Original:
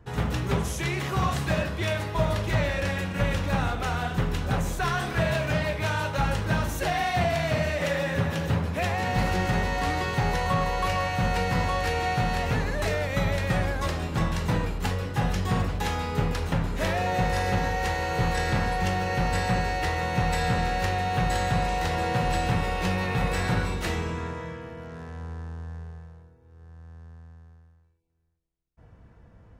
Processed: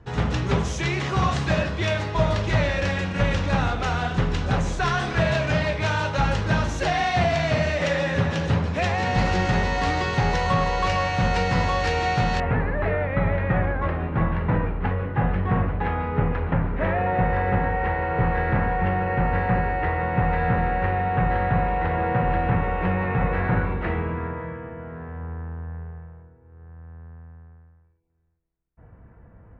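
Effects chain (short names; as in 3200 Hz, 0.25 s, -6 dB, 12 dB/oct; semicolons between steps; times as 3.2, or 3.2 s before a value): LPF 6800 Hz 24 dB/oct, from 12.4 s 2100 Hz; gain +3.5 dB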